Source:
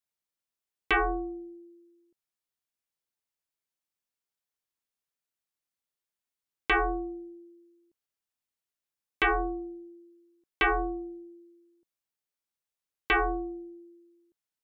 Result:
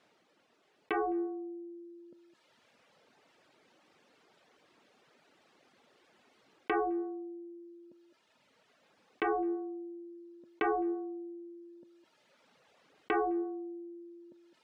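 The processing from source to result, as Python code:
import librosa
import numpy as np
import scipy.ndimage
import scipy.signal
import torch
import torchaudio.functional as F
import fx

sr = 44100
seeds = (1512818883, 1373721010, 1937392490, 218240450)

y = fx.bandpass_edges(x, sr, low_hz=300.0, high_hz=3400.0)
y = fx.tilt_shelf(y, sr, db=7.5, hz=690.0)
y = fx.notch(y, sr, hz=1000.0, q=22.0)
y = y + 10.0 ** (-17.5 / 20.0) * np.pad(y, (int(209 * sr / 1000.0), 0))[:len(y)]
y = fx.rider(y, sr, range_db=10, speed_s=0.5)
y = fx.dereverb_blind(y, sr, rt60_s=1.2)
y = fx.env_lowpass_down(y, sr, base_hz=1300.0, full_db=-29.0)
y = fx.env_flatten(y, sr, amount_pct=50)
y = y * librosa.db_to_amplitude(-3.5)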